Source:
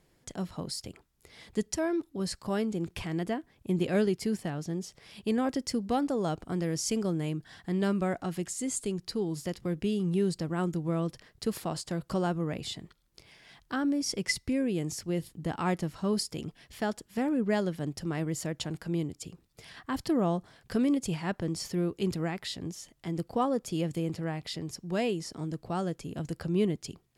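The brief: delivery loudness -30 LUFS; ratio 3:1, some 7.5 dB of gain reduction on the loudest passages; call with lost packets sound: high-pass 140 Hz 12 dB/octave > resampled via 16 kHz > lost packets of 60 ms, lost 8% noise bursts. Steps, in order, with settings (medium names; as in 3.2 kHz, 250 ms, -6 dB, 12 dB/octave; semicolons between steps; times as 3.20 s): compression 3:1, threshold -33 dBFS; high-pass 140 Hz 12 dB/octave; resampled via 16 kHz; lost packets of 60 ms, lost 8% noise bursts; trim +8 dB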